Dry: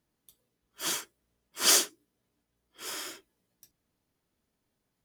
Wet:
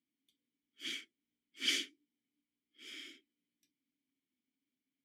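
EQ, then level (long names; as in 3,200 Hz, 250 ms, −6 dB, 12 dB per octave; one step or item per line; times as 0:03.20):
dynamic equaliser 2,000 Hz, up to +5 dB, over −42 dBFS, Q 0.84
formant filter i
high-shelf EQ 3,400 Hz +7.5 dB
0.0 dB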